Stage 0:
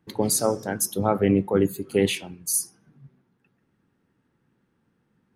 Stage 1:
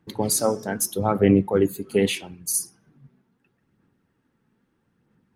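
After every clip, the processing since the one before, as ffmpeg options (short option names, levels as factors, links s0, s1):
-af "aphaser=in_gain=1:out_gain=1:delay=4.7:decay=0.33:speed=0.78:type=sinusoidal"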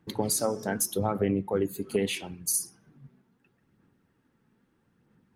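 -af "acompressor=threshold=0.0631:ratio=4"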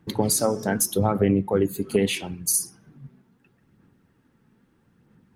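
-af "bass=f=250:g=3,treble=f=4000:g=0,volume=1.78"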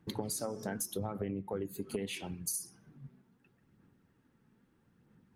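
-af "acompressor=threshold=0.0447:ratio=5,volume=0.447"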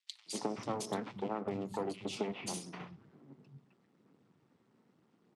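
-filter_complex "[0:a]aeval=exprs='max(val(0),0)':c=same,highpass=f=130:w=0.5412,highpass=f=130:w=1.3066,equalizer=f=570:t=q:w=4:g=-4,equalizer=f=1600:t=q:w=4:g=-7,equalizer=f=6500:t=q:w=4:g=-4,lowpass=f=7700:w=0.5412,lowpass=f=7700:w=1.3066,acrossover=split=170|2600[s0][s1][s2];[s1]adelay=260[s3];[s0]adelay=500[s4];[s4][s3][s2]amix=inputs=3:normalize=0,volume=2.11"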